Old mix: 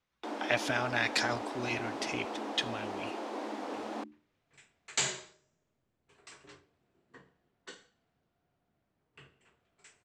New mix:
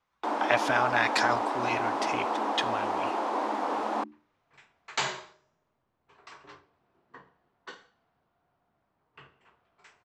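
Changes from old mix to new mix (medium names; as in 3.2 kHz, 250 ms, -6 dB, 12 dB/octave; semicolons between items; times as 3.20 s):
first sound +3.0 dB; second sound: add low-pass 5.9 kHz 24 dB/octave; master: add peaking EQ 1 kHz +11 dB 1.3 oct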